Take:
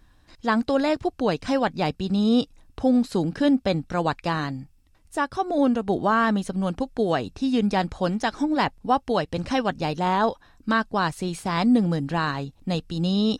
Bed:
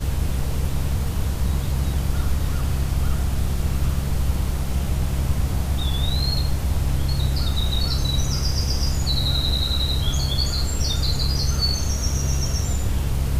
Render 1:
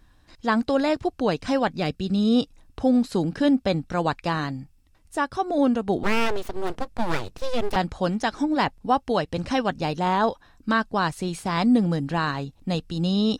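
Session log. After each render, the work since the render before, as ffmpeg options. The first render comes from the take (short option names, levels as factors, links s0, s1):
-filter_complex "[0:a]asettb=1/sr,asplit=3[s0][s1][s2];[s0]atrim=end=1.794[s3];[s1]atrim=start=1.79:end=2.36,asetpts=PTS-STARTPTS,afade=t=in:d=0.004:c=qsin,afade=t=out:st=0.566:d=0.004:c=qsin,equalizer=f=910:t=o:w=0.38:g=-13.5[s4];[s2]atrim=start=2.356[s5];[s3][s4]acrossfade=d=0.004:c1=hsin:c2=qsin[s6];[s6][s5]acrossfade=d=0.004:c1=qsin:c2=hsin,asettb=1/sr,asplit=3[s7][s8][s9];[s7]atrim=end=6.034[s10];[s8]atrim=start=6.03:end=7.76,asetpts=PTS-STARTPTS,afade=t=in:d=0.004:c=qsin,afade=t=out:st=1.726:d=0.004:c=qsin,aeval=exprs='abs(val(0))':c=same[s11];[s9]atrim=start=7.756[s12];[s10][s11]acrossfade=d=0.004:c1=hsin:c2=qsin[s13];[s13][s12]acrossfade=d=0.004:c1=qsin:c2=hsin"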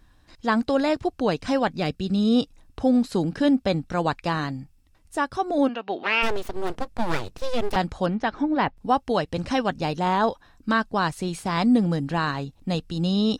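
-filter_complex "[0:a]asplit=3[s0][s1][s2];[s0]afade=t=out:st=5.67:d=0.02[s3];[s1]highpass=460,equalizer=f=470:t=q:w=4:g=-4,equalizer=f=1700:t=q:w=4:g=3,equalizer=f=2700:t=q:w=4:g=9,lowpass=f=4600:w=0.5412,lowpass=f=4600:w=1.3066,afade=t=in:st=5.67:d=0.02,afade=t=out:st=6.22:d=0.02[s4];[s2]afade=t=in:st=6.22:d=0.02[s5];[s3][s4][s5]amix=inputs=3:normalize=0,asettb=1/sr,asplit=3[s6][s7][s8];[s6]atrim=end=8.064[s9];[s7]atrim=start=8.06:end=8.77,asetpts=PTS-STARTPTS,afade=t=in:d=0.004:c=qsin,afade=t=out:st=0.706:d=0.004:c=qsin,lowpass=2800[s10];[s8]atrim=start=8.766[s11];[s9][s10]acrossfade=d=0.004:c1=hsin:c2=qsin[s12];[s12][s11]acrossfade=d=0.004:c1=qsin:c2=hsin"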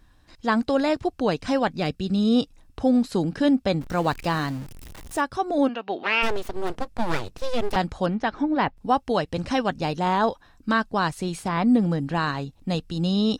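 -filter_complex "[0:a]asettb=1/sr,asplit=3[s0][s1][s2];[s0]atrim=end=3.814[s3];[s1]atrim=start=3.81:end=5.21,asetpts=PTS-STARTPTS,afade=t=in:d=0.004:c=qsin,afade=t=out:st=1.396:d=0.004:c=qsin,aeval=exprs='val(0)+0.5*0.0168*sgn(val(0))':c=same[s4];[s2]atrim=start=5.206[s5];[s3][s4]acrossfade=d=0.004:c1=hsin:c2=qsin[s6];[s6][s5]acrossfade=d=0.004:c1=qsin:c2=hsin,asettb=1/sr,asplit=3[s7][s8][s9];[s7]atrim=end=11.484[s10];[s8]atrim=start=11.48:end=12.15,asetpts=PTS-STARTPTS,afade=t=in:d=0.004:c=qsin,afade=t=out:st=0.666:d=0.004:c=qsin,acrossover=split=3000[s11][s12];[s12]acompressor=threshold=0.00355:ratio=4:attack=1:release=60[s13];[s11][s13]amix=inputs=2:normalize=0[s14];[s9]atrim=start=12.146[s15];[s10][s14]acrossfade=d=0.004:c1=hsin:c2=qsin[s16];[s16][s15]acrossfade=d=0.004:c1=qsin:c2=hsin"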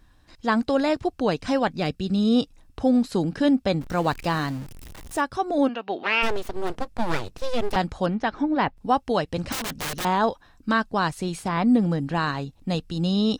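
-filter_complex "[0:a]asettb=1/sr,asplit=3[s0][s1][s2];[s0]atrim=end=9.524[s3];[s1]atrim=start=9.52:end=10.05,asetpts=PTS-STARTPTS,afade=t=in:d=0.004:c=qsin,afade=t=out:st=0.526:d=0.004:c=qsin,aeval=exprs='(mod(16.8*val(0)+1,2)-1)/16.8':c=same[s4];[s2]atrim=start=10.046[s5];[s3][s4]acrossfade=d=0.004:c1=hsin:c2=qsin[s6];[s6][s5]acrossfade=d=0.004:c1=qsin:c2=hsin"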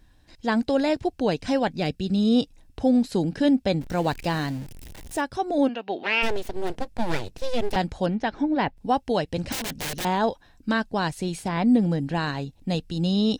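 -af "equalizer=f=1200:t=o:w=0.46:g=-9"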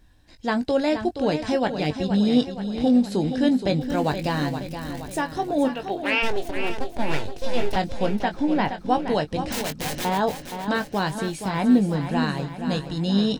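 -filter_complex "[0:a]asplit=2[s0][s1];[s1]adelay=20,volume=0.335[s2];[s0][s2]amix=inputs=2:normalize=0,aecho=1:1:472|944|1416|1888|2360|2832:0.355|0.192|0.103|0.0559|0.0302|0.0163"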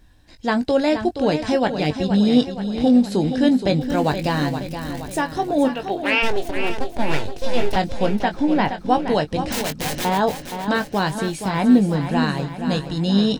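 -af "volume=1.5"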